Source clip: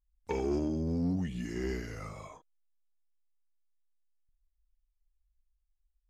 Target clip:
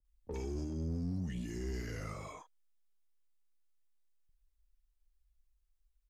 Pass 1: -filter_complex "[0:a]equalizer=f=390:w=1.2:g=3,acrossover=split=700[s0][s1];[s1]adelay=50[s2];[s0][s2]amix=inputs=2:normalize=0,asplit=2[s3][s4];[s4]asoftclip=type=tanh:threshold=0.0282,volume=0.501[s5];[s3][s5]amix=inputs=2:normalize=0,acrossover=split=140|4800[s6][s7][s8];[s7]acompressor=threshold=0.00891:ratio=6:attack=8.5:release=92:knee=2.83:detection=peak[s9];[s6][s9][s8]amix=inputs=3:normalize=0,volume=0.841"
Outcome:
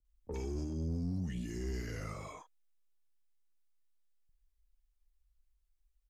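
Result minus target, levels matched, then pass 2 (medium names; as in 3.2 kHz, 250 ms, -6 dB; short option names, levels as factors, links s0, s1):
saturation: distortion -6 dB
-filter_complex "[0:a]equalizer=f=390:w=1.2:g=3,acrossover=split=700[s0][s1];[s1]adelay=50[s2];[s0][s2]amix=inputs=2:normalize=0,asplit=2[s3][s4];[s4]asoftclip=type=tanh:threshold=0.0112,volume=0.501[s5];[s3][s5]amix=inputs=2:normalize=0,acrossover=split=140|4800[s6][s7][s8];[s7]acompressor=threshold=0.00891:ratio=6:attack=8.5:release=92:knee=2.83:detection=peak[s9];[s6][s9][s8]amix=inputs=3:normalize=0,volume=0.841"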